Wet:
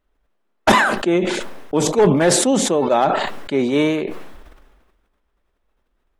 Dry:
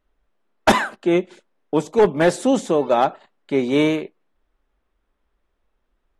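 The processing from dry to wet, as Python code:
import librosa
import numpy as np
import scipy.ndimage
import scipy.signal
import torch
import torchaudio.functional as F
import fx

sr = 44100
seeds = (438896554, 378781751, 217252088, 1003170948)

y = fx.sustainer(x, sr, db_per_s=41.0)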